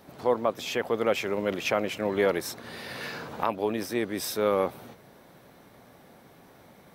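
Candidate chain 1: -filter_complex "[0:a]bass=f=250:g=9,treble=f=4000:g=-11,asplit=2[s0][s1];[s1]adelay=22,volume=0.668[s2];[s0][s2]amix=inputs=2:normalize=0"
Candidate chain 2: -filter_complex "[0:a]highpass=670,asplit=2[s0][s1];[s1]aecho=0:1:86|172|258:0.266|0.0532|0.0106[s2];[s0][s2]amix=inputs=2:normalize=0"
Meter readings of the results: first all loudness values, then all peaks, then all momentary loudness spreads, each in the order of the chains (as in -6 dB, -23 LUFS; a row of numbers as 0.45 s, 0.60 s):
-26.0 LUFS, -32.5 LUFS; -8.5 dBFS, -14.5 dBFS; 13 LU, 7 LU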